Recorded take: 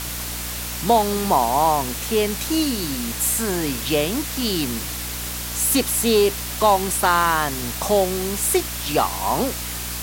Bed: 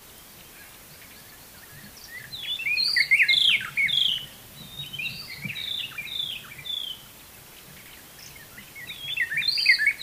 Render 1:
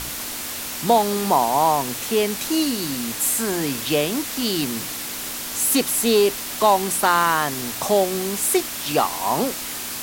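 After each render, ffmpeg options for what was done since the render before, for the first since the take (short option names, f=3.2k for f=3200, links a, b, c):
-af "bandreject=f=60:t=h:w=4,bandreject=f=120:t=h:w=4,bandreject=f=180:t=h:w=4"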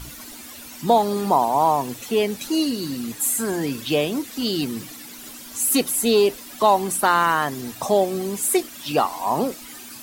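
-af "afftdn=nr=13:nf=-30"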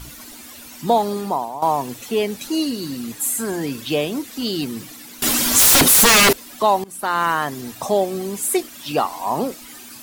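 -filter_complex "[0:a]asettb=1/sr,asplit=3[a][b][c];[a]atrim=end=5.224[d];[b]atrim=start=5.22:end=6.33,asetpts=PTS-STARTPTS,afade=t=in:d=0.004:c=qsin,afade=t=out:st=1.106:d=0.004:c=qsin,aeval=exprs='0.376*sin(PI/2*7.08*val(0)/0.376)':c=same[e];[c]atrim=start=6.326[f];[d][e]acrossfade=d=0.004:c1=hsin:c2=qsin[g];[g][f]acrossfade=d=0.004:c1=qsin:c2=hsin,asplit=3[h][i][j];[h]atrim=end=1.62,asetpts=PTS-STARTPTS,afade=t=out:st=1.08:d=0.54:silence=0.199526[k];[i]atrim=start=1.62:end=6.84,asetpts=PTS-STARTPTS,afade=t=in:d=0.004:c=hsin:silence=0.199526,afade=t=out:st=5.216:d=0.004:c=hsin:silence=0.0841395[l];[j]atrim=start=6.84,asetpts=PTS-STARTPTS,afade=t=in:d=0.42:silence=0.0841395[m];[k][l][m]concat=n=3:v=0:a=1"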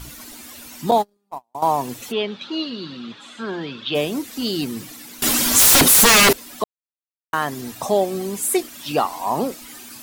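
-filter_complex "[0:a]asettb=1/sr,asplit=3[a][b][c];[a]atrim=end=0.914[d];[b]atrim=start=0.91:end=1.55,asetpts=PTS-STARTPTS,afade=t=in:d=0.004:c=qsin,afade=t=out:st=0.636:d=0.004:c=qsin,agate=range=-45dB:threshold=-19dB:ratio=16:release=100:detection=peak[e];[c]atrim=start=1.546[f];[d][e]acrossfade=d=0.004:c1=hsin:c2=qsin[g];[g][f]acrossfade=d=0.004:c1=qsin:c2=hsin,asplit=3[h][i][j];[h]afade=t=out:st=2.11:d=0.02[k];[i]highpass=180,equalizer=f=280:t=q:w=4:g=-9,equalizer=f=460:t=q:w=4:g=-4,equalizer=f=730:t=q:w=4:g=-4,equalizer=f=1.3k:t=q:w=4:g=5,equalizer=f=2k:t=q:w=4:g=-5,equalizer=f=3.5k:t=q:w=4:g=8,lowpass=f=3.9k:w=0.5412,lowpass=f=3.9k:w=1.3066,afade=t=in:st=2.11:d=0.02,afade=t=out:st=3.94:d=0.02[l];[j]afade=t=in:st=3.94:d=0.02[m];[k][l][m]amix=inputs=3:normalize=0,asplit=3[n][o][p];[n]atrim=end=6.64,asetpts=PTS-STARTPTS,afade=t=out:st=6.636:d=0.004:c=hsin[q];[o]atrim=start=6.64:end=7.33,asetpts=PTS-STARTPTS,volume=0[r];[p]atrim=start=7.33,asetpts=PTS-STARTPTS,afade=t=in:d=0.004:c=hsin[s];[q][r][s]concat=n=3:v=0:a=1"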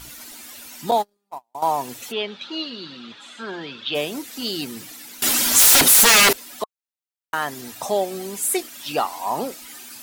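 -af "lowshelf=f=410:g=-9,bandreject=f=1.1k:w=15"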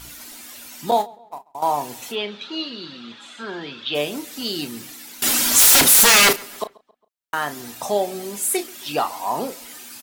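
-filter_complex "[0:a]asplit=2[a][b];[b]adelay=34,volume=-10.5dB[c];[a][c]amix=inputs=2:normalize=0,asplit=2[d][e];[e]adelay=136,lowpass=f=3.4k:p=1,volume=-23dB,asplit=2[f][g];[g]adelay=136,lowpass=f=3.4k:p=1,volume=0.47,asplit=2[h][i];[i]adelay=136,lowpass=f=3.4k:p=1,volume=0.47[j];[d][f][h][j]amix=inputs=4:normalize=0"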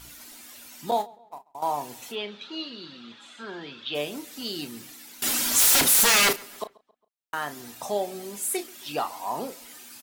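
-af "volume=-6.5dB"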